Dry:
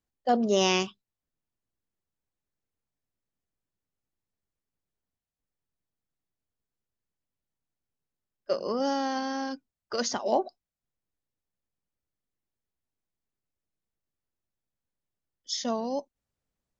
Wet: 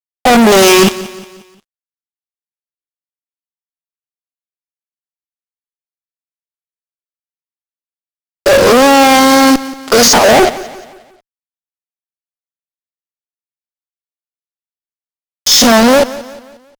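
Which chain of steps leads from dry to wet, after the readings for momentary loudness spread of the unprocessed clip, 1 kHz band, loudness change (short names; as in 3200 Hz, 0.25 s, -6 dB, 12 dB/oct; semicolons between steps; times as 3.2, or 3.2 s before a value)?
13 LU, +20.5 dB, +21.0 dB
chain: stepped spectrum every 50 ms; fuzz box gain 49 dB, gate -48 dBFS; feedback echo 0.178 s, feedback 44%, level -17 dB; gain +8 dB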